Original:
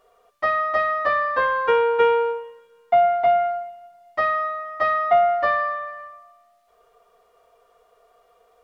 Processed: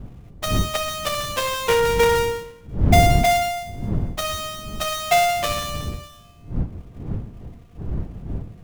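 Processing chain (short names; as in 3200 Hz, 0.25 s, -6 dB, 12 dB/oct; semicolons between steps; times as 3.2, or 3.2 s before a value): switching dead time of 0.27 ms; wind noise 130 Hz -27 dBFS; gain +1 dB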